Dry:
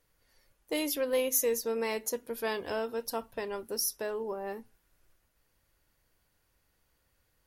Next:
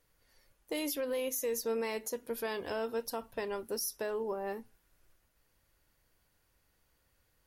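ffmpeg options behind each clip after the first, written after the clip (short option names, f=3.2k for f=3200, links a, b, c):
-af "alimiter=level_in=2dB:limit=-24dB:level=0:latency=1:release=87,volume=-2dB"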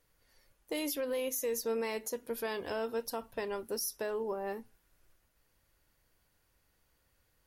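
-af anull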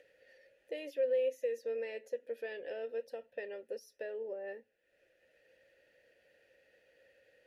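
-filter_complex "[0:a]acompressor=mode=upward:threshold=-42dB:ratio=2.5,asplit=3[a][b][c];[a]bandpass=f=530:t=q:w=8,volume=0dB[d];[b]bandpass=f=1.84k:t=q:w=8,volume=-6dB[e];[c]bandpass=f=2.48k:t=q:w=8,volume=-9dB[f];[d][e][f]amix=inputs=3:normalize=0,volume=5dB"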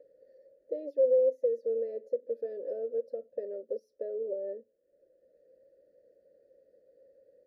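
-af "firequalizer=gain_entry='entry(120,0);entry(210,6);entry(350,7);entry(580,10);entry(860,-20);entry(1200,-12);entry(2800,-30);entry(4300,-12);entry(7400,-19)':delay=0.05:min_phase=1,volume=-2dB"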